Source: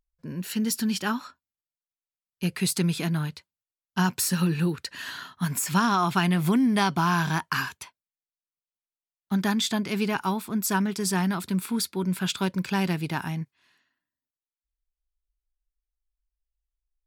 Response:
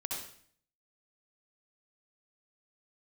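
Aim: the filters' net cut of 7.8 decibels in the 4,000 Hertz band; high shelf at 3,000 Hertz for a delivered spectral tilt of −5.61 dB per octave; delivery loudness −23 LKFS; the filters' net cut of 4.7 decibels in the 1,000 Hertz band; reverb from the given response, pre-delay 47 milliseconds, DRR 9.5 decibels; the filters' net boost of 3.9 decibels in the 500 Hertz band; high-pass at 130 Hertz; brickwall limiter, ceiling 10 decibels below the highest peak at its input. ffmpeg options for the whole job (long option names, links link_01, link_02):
-filter_complex "[0:a]highpass=130,equalizer=frequency=500:width_type=o:gain=7.5,equalizer=frequency=1000:width_type=o:gain=-7,highshelf=frequency=3000:gain=-5,equalizer=frequency=4000:width_type=o:gain=-6,alimiter=limit=-20dB:level=0:latency=1,asplit=2[link_01][link_02];[1:a]atrim=start_sample=2205,adelay=47[link_03];[link_02][link_03]afir=irnorm=-1:irlink=0,volume=-11.5dB[link_04];[link_01][link_04]amix=inputs=2:normalize=0,volume=7dB"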